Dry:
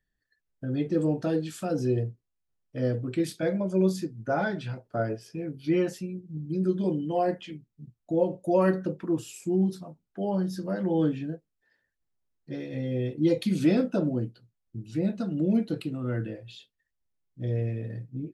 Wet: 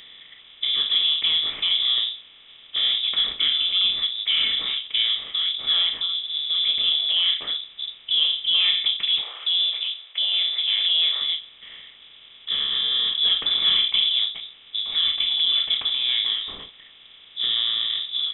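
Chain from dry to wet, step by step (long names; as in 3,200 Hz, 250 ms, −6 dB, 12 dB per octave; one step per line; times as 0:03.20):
compressor on every frequency bin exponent 0.4
voice inversion scrambler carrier 3,700 Hz
0:09.21–0:11.22: high-pass filter 450 Hz 24 dB per octave
level −1.5 dB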